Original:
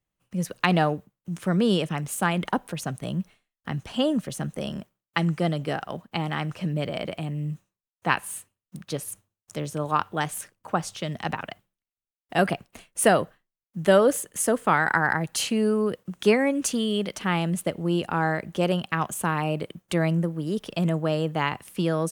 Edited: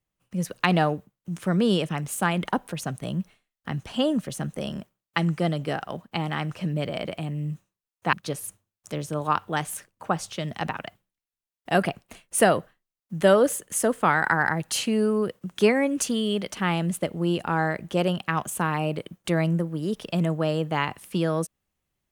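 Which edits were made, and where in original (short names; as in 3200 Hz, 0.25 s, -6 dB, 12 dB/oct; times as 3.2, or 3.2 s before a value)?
8.13–8.77 cut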